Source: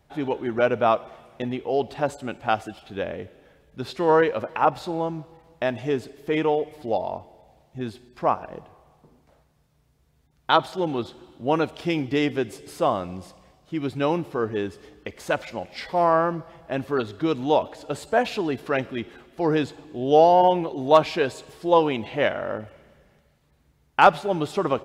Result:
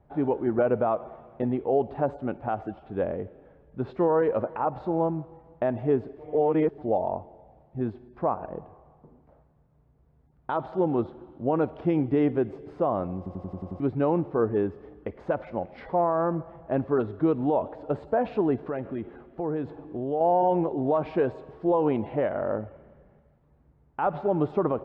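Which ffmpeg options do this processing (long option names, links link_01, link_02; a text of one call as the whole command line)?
ffmpeg -i in.wav -filter_complex "[0:a]asettb=1/sr,asplit=3[link_01][link_02][link_03];[link_01]atrim=end=18.584[link_04];[link_02]atrim=start=18.58:end=20.21,asetpts=PTS-STARTPTS,afade=type=in:duration=0.004:curve=qsin,afade=type=out:start_time=1.626:duration=0.004:curve=qsin,acompressor=threshold=-30dB:ratio=3:attack=3.2:release=140:knee=1:detection=peak[link_05];[link_03]atrim=start=20.206[link_06];[link_04][link_05]acrossfade=duration=0.004:curve1=hsin:curve2=qsin[link_07];[link_07][link_06]acrossfade=duration=0.004:curve1=qsin:curve2=hsin,asplit=10[link_08][link_09][link_10][link_11][link_12][link_13][link_14][link_15][link_16][link_17];[link_08]atrim=end=6.192[link_18];[link_09]atrim=start=6.188:end=6.782,asetpts=PTS-STARTPTS,areverse[link_19];[link_10]atrim=start=6.778:end=13.262[link_20];[link_11]atrim=start=13.168:end=13.262[link_21];[link_12]atrim=start=13.168:end=13.262[link_22];[link_13]atrim=start=13.168:end=13.262[link_23];[link_14]atrim=start=13.168:end=13.262[link_24];[link_15]atrim=start=13.168:end=13.262[link_25];[link_16]atrim=start=13.168:end=13.262[link_26];[link_17]atrim=start=13.798[link_27];[link_18][link_19]acrossfade=duration=0.004:curve1=hsin:curve2=hsin[link_28];[link_28][link_20]acrossfade=duration=0.004:curve1=hsin:curve2=hsin[link_29];[link_29][link_21]acrossfade=duration=0.004:curve1=hsin:curve2=hsin[link_30];[link_30][link_22]acrossfade=duration=0.004:curve1=hsin:curve2=hsin[link_31];[link_31][link_23]acrossfade=duration=0.004:curve1=hsin:curve2=hsin[link_32];[link_32][link_24]acrossfade=duration=0.004:curve1=hsin:curve2=hsin[link_33];[link_33][link_25]acrossfade=duration=0.004:curve1=hsin:curve2=hsin[link_34];[link_34][link_26]acrossfade=duration=0.004:curve1=hsin:curve2=hsin[link_35];[link_35][link_27]acrossfade=duration=0.004:curve1=hsin:curve2=hsin,alimiter=limit=-15.5dB:level=0:latency=1:release=84,lowpass=1000,volume=2dB" out.wav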